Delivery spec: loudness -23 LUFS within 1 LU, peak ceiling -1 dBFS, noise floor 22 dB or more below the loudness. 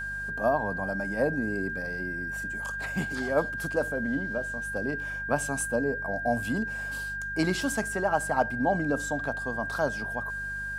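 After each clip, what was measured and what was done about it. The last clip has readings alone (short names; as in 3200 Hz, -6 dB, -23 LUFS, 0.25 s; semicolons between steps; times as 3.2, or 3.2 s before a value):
hum 50 Hz; harmonics up to 200 Hz; hum level -41 dBFS; steady tone 1600 Hz; tone level -32 dBFS; loudness -29.5 LUFS; peak -11.5 dBFS; loudness target -23.0 LUFS
-> de-hum 50 Hz, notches 4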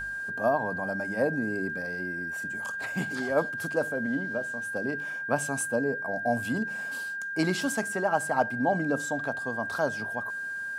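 hum none; steady tone 1600 Hz; tone level -32 dBFS
-> notch 1600 Hz, Q 30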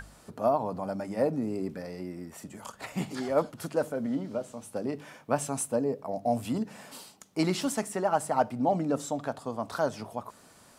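steady tone none; loudness -31.0 LUFS; peak -11.5 dBFS; loudness target -23.0 LUFS
-> gain +8 dB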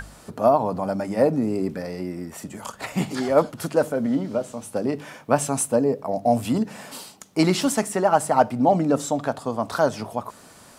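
loudness -23.0 LUFS; peak -3.5 dBFS; noise floor -48 dBFS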